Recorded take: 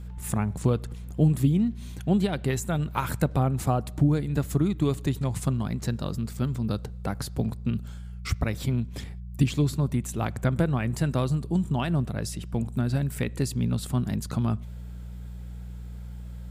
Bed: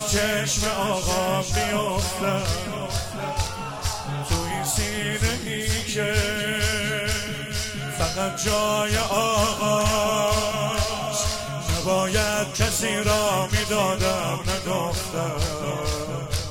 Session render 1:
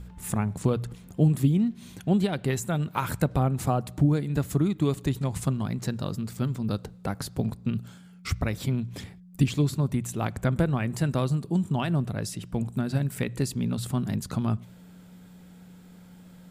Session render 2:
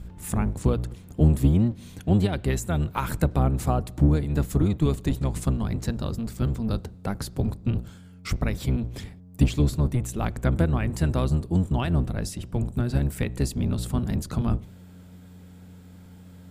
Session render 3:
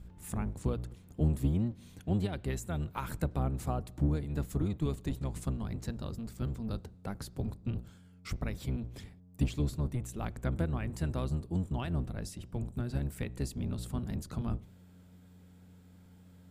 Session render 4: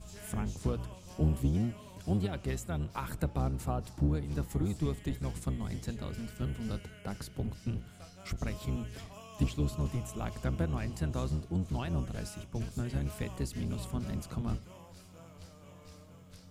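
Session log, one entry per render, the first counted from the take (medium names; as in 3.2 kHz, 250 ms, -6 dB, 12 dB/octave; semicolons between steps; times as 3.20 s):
de-hum 60 Hz, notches 2
octave divider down 1 oct, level 0 dB
trim -10 dB
add bed -29 dB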